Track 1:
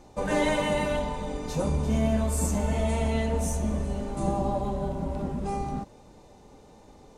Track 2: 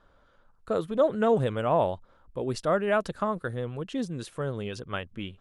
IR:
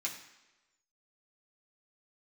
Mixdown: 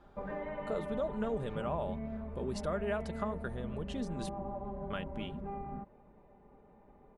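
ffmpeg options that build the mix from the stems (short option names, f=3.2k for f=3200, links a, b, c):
-filter_complex "[0:a]lowpass=f=2.1k:w=0.5412,lowpass=f=2.1k:w=1.3066,acompressor=threshold=-31dB:ratio=3,volume=-9dB[a];[1:a]acompressor=threshold=-35dB:ratio=2.5,volume=-3dB,asplit=3[b][c][d];[b]atrim=end=4.29,asetpts=PTS-STARTPTS,afade=t=out:st=4.286:d=0.004:c=hsin[e];[c]atrim=start=4.29:end=4.9,asetpts=PTS-STARTPTS,volume=0[f];[d]atrim=start=4.9,asetpts=PTS-STARTPTS,afade=t=in:d=0.004:c=hsin[g];[e][f][g]concat=n=3:v=0:a=1[h];[a][h]amix=inputs=2:normalize=0,aecho=1:1:5:0.38"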